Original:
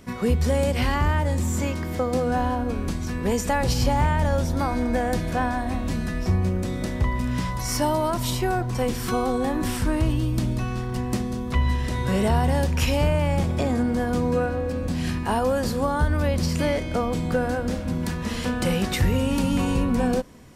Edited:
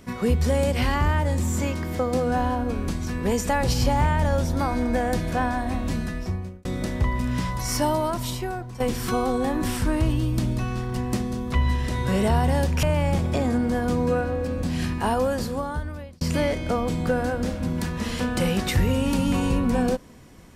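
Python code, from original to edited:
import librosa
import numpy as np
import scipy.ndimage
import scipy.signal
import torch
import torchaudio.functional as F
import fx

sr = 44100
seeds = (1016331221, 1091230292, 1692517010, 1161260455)

y = fx.edit(x, sr, fx.fade_out_span(start_s=5.96, length_s=0.69),
    fx.fade_out_to(start_s=7.9, length_s=0.9, floor_db=-12.5),
    fx.cut(start_s=12.83, length_s=0.25),
    fx.fade_out_span(start_s=15.42, length_s=1.04), tone=tone)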